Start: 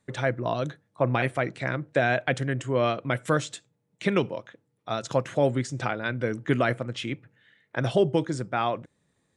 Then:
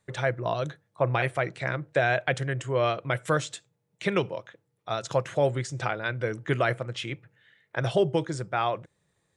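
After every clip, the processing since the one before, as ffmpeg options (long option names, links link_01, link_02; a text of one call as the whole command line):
ffmpeg -i in.wav -af "equalizer=frequency=250:width=3.2:gain=-12.5" out.wav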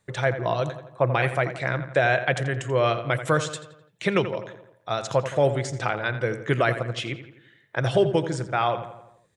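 ffmpeg -i in.wav -filter_complex "[0:a]asplit=2[link_01][link_02];[link_02]adelay=85,lowpass=frequency=3400:poles=1,volume=-11dB,asplit=2[link_03][link_04];[link_04]adelay=85,lowpass=frequency=3400:poles=1,volume=0.54,asplit=2[link_05][link_06];[link_06]adelay=85,lowpass=frequency=3400:poles=1,volume=0.54,asplit=2[link_07][link_08];[link_08]adelay=85,lowpass=frequency=3400:poles=1,volume=0.54,asplit=2[link_09][link_10];[link_10]adelay=85,lowpass=frequency=3400:poles=1,volume=0.54,asplit=2[link_11][link_12];[link_12]adelay=85,lowpass=frequency=3400:poles=1,volume=0.54[link_13];[link_01][link_03][link_05][link_07][link_09][link_11][link_13]amix=inputs=7:normalize=0,volume=3dB" out.wav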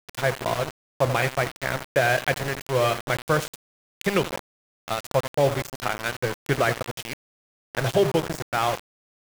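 ffmpeg -i in.wav -af "aeval=exprs='val(0)*gte(abs(val(0)),0.0596)':channel_layout=same" out.wav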